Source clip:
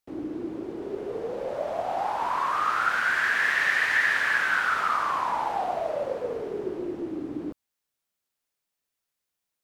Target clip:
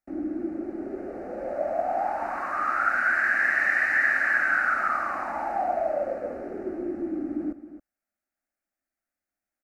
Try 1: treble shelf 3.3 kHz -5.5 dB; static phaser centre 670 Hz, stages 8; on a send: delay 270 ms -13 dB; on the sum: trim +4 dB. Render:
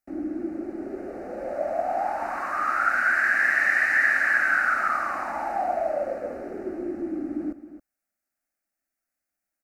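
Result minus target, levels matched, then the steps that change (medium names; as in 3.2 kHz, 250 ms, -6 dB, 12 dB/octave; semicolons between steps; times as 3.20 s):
8 kHz band +4.5 dB
change: treble shelf 3.3 kHz -13 dB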